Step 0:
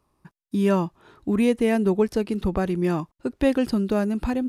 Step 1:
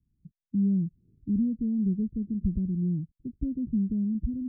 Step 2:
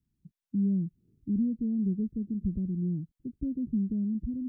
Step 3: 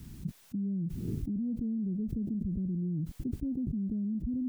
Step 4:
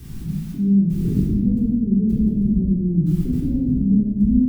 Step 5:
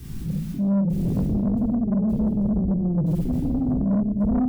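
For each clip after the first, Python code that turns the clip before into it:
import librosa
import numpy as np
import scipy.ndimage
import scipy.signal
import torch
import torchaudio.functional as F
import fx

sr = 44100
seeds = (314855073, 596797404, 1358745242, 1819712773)

y1 = scipy.signal.sosfilt(scipy.signal.cheby2(4, 70, 960.0, 'lowpass', fs=sr, output='sos'), x)
y2 = fx.low_shelf(y1, sr, hz=160.0, db=-9.5)
y2 = y2 * 10.0 ** (1.5 / 20.0)
y3 = fx.env_flatten(y2, sr, amount_pct=100)
y3 = y3 * 10.0 ** (-7.5 / 20.0)
y4 = fx.room_shoebox(y3, sr, seeds[0], volume_m3=1100.0, walls='mixed', distance_m=3.7)
y4 = y4 * 10.0 ** (5.0 / 20.0)
y5 = 10.0 ** (-17.5 / 20.0) * np.tanh(y4 / 10.0 ** (-17.5 / 20.0))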